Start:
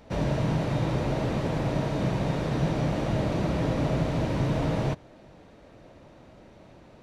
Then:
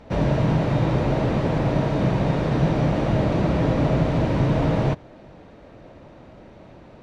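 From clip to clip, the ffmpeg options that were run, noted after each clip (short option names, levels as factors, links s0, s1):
-af "aemphasis=mode=reproduction:type=50kf,volume=2"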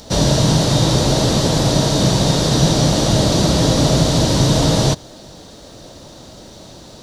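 -af "aexciter=amount=15:drive=3.4:freq=3600,volume=1.88"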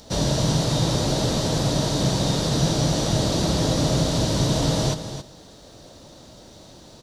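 -af "aecho=1:1:272:0.299,volume=0.422"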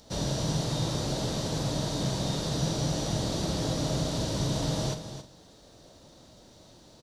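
-filter_complex "[0:a]asplit=2[s0][s1];[s1]adelay=45,volume=0.299[s2];[s0][s2]amix=inputs=2:normalize=0,volume=0.376"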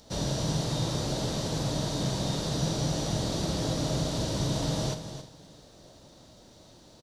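-af "aecho=1:1:354|708|1062|1416:0.0794|0.0405|0.0207|0.0105"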